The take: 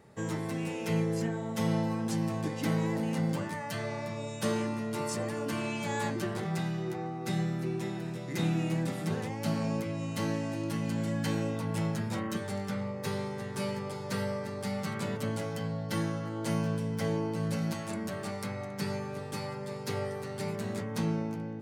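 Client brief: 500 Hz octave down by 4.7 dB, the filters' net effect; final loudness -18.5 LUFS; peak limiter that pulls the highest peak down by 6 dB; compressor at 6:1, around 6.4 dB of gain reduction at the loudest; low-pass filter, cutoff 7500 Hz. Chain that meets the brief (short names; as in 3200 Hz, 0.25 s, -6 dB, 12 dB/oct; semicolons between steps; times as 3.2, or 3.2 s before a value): LPF 7500 Hz; bell 500 Hz -6 dB; compressor 6:1, threshold -33 dBFS; gain +20.5 dB; limiter -9 dBFS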